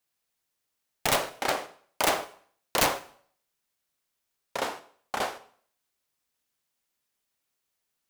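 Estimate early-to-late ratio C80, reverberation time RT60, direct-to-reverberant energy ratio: 18.5 dB, 0.50 s, 11.0 dB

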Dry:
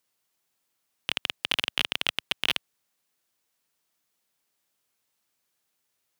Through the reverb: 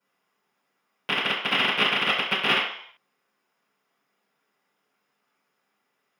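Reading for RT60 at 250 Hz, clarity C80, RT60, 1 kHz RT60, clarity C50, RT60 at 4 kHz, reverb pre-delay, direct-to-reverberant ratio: 0.40 s, 7.0 dB, 0.60 s, 0.65 s, 3.5 dB, 0.65 s, 3 ms, -13.0 dB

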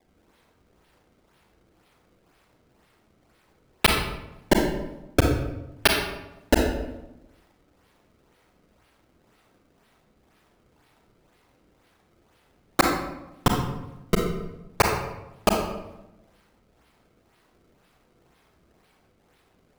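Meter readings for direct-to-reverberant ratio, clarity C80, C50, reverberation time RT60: 1.0 dB, 6.0 dB, 3.0 dB, 0.95 s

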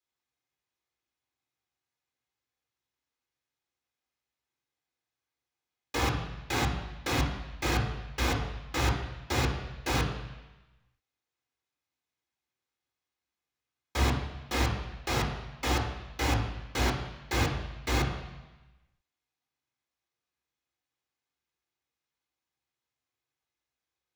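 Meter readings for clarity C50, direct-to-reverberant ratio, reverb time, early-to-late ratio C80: 6.0 dB, -3.0 dB, 1.1 s, 8.5 dB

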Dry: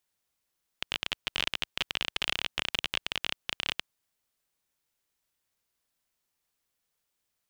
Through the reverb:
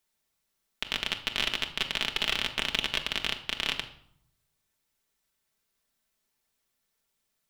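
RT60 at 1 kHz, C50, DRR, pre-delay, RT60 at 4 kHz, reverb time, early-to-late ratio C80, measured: 0.70 s, 12.0 dB, 3.0 dB, 4 ms, 0.50 s, 0.65 s, 15.5 dB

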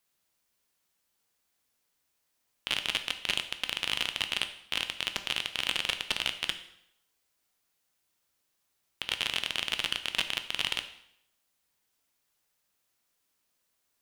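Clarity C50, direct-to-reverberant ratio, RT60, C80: 12.0 dB, 8.0 dB, 0.75 s, 14.5 dB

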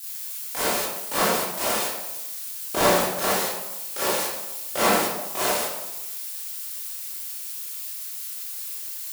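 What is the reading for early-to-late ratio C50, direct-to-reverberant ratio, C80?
-2.5 dB, -10.5 dB, 2.0 dB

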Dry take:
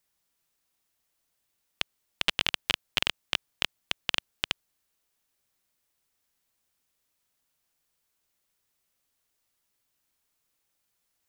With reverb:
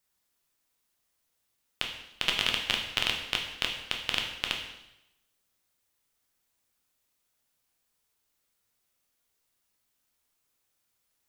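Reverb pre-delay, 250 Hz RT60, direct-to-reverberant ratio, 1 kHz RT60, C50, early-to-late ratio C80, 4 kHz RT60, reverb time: 7 ms, 0.90 s, 1.0 dB, 0.85 s, 6.0 dB, 8.0 dB, 0.85 s, 0.90 s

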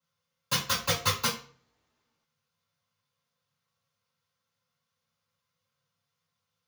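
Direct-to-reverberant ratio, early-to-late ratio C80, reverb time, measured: -8.0 dB, 13.5 dB, 0.45 s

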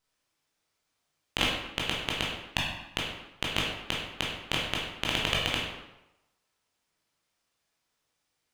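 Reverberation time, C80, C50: 0.95 s, 4.5 dB, 1.5 dB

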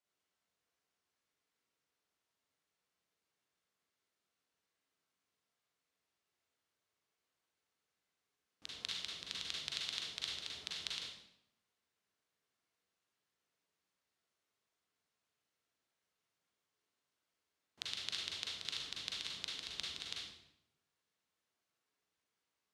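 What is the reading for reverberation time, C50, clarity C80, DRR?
0.80 s, -0.5 dB, 4.5 dB, -4.0 dB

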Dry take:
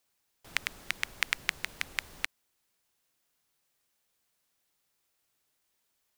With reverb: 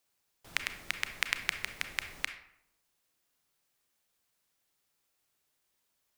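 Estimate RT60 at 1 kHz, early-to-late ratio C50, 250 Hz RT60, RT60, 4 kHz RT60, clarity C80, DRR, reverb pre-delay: 0.75 s, 10.0 dB, 0.95 s, 0.80 s, 0.45 s, 13.0 dB, 8.0 dB, 29 ms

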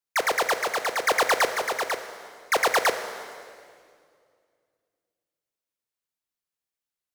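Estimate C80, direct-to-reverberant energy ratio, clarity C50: 10.5 dB, 8.0 dB, 9.0 dB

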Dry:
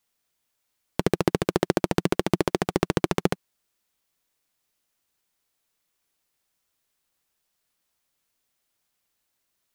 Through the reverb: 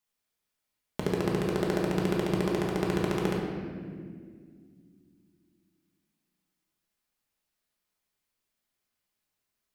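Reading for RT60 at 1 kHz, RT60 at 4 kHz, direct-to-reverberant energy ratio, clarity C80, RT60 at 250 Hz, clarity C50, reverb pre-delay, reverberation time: 1.6 s, 1.3 s, -3.0 dB, 3.0 dB, 3.4 s, 1.5 dB, 5 ms, 2.0 s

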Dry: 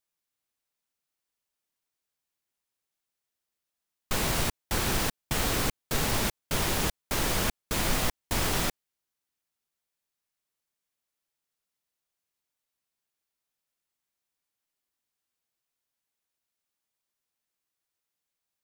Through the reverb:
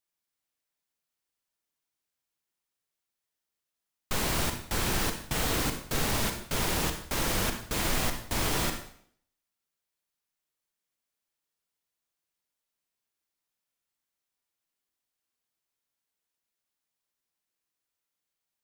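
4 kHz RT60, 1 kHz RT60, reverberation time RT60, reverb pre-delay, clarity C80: 0.55 s, 0.60 s, 0.60 s, 36 ms, 11.0 dB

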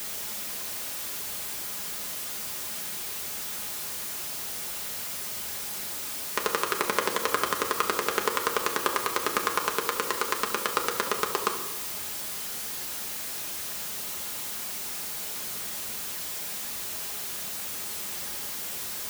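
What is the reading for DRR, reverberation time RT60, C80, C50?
2.0 dB, 1.1 s, 11.5 dB, 8.5 dB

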